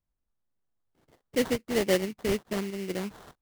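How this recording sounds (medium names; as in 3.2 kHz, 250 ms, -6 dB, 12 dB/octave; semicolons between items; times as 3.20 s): phasing stages 6, 2.2 Hz, lowest notch 710–1500 Hz; tremolo saw up 0.74 Hz, depth 40%; aliases and images of a low sample rate 2.5 kHz, jitter 20%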